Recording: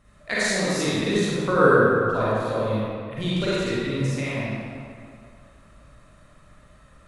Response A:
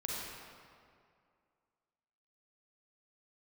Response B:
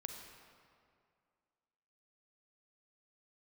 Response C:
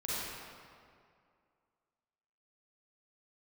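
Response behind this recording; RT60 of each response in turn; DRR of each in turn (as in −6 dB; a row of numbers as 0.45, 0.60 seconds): C; 2.3, 2.2, 2.3 seconds; −4.5, 3.5, −9.5 decibels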